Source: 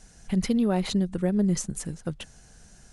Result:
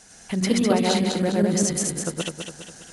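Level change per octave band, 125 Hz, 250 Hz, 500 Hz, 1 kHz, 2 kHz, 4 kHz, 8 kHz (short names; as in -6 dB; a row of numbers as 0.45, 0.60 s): +1.5, +2.5, +7.0, +9.0, +9.5, +9.5, +10.5 dB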